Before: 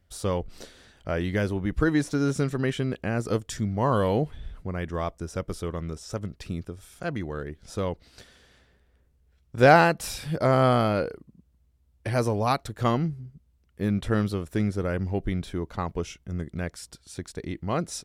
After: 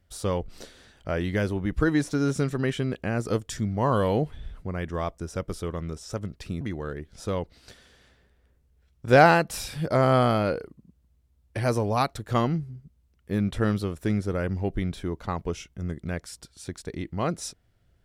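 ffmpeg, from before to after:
ffmpeg -i in.wav -filter_complex "[0:a]asplit=2[link_01][link_02];[link_01]atrim=end=6.612[link_03];[link_02]atrim=start=7.108[link_04];[link_03][link_04]acrossfade=duration=0.004:curve1=hsin:curve2=hsin" out.wav

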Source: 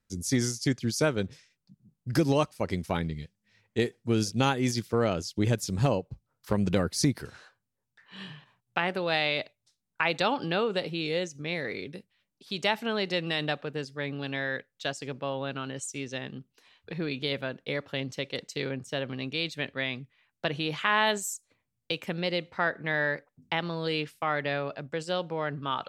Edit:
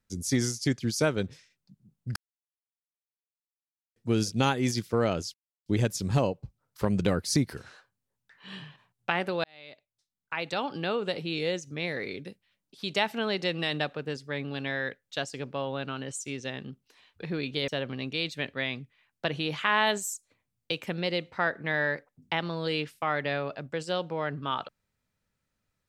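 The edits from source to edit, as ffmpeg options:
ffmpeg -i in.wav -filter_complex "[0:a]asplit=6[link_01][link_02][link_03][link_04][link_05][link_06];[link_01]atrim=end=2.16,asetpts=PTS-STARTPTS,afade=type=out:start_time=2.156:duration=0.004:curve=hsin[link_07];[link_02]atrim=start=2.16:end=3.96,asetpts=PTS-STARTPTS,volume=0[link_08];[link_03]atrim=start=3.96:end=5.34,asetpts=PTS-STARTPTS,afade=type=in:duration=0.004:curve=hsin,afade=type=out:start_time=1.376:duration=0.004:curve=hsin,apad=pad_dur=0.32[link_09];[link_04]atrim=start=5.34:end=9.12,asetpts=PTS-STARTPTS,afade=type=in:duration=0.004:curve=hsin,afade=type=out:start_time=3.776:duration=0.004:curve=hsin[link_10];[link_05]atrim=start=9.12:end=17.362,asetpts=PTS-STARTPTS,afade=type=in:duration=1.91[link_11];[link_06]atrim=start=18.878[link_12];[link_07][link_08][link_09][link_10][link_11]concat=n=5:v=0:a=1[link_13];[link_13][link_12]acrossfade=duration=0.004:curve1=hsin:curve2=hsin" out.wav

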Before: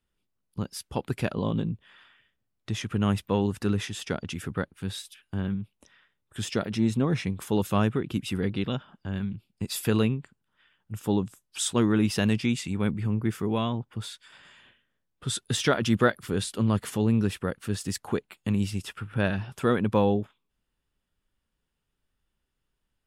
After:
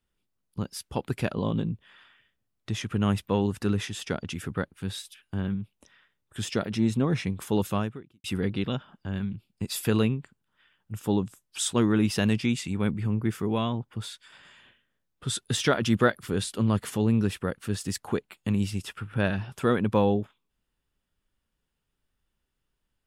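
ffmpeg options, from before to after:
ffmpeg -i in.wav -filter_complex "[0:a]asplit=2[link_01][link_02];[link_01]atrim=end=8.24,asetpts=PTS-STARTPTS,afade=type=out:start_time=7.67:duration=0.57:curve=qua[link_03];[link_02]atrim=start=8.24,asetpts=PTS-STARTPTS,afade=type=in:duration=0.004:curve=hsin[link_04];[link_03][link_04]concat=n=2:v=0:a=1" out.wav

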